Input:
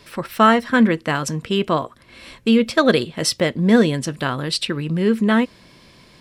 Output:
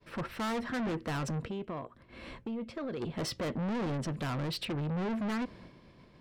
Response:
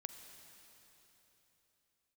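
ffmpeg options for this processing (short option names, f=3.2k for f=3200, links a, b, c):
-filter_complex "[0:a]agate=range=-33dB:threshold=-42dB:ratio=3:detection=peak,lowpass=f=1k:p=1,alimiter=limit=-13.5dB:level=0:latency=1:release=22,asplit=3[a][b][c];[a]afade=t=out:st=1.47:d=0.02[d];[b]acompressor=threshold=-37dB:ratio=3,afade=t=in:st=1.47:d=0.02,afade=t=out:st=3.01:d=0.02[e];[c]afade=t=in:st=3.01:d=0.02[f];[d][e][f]amix=inputs=3:normalize=0,asoftclip=type=tanh:threshold=-31.5dB"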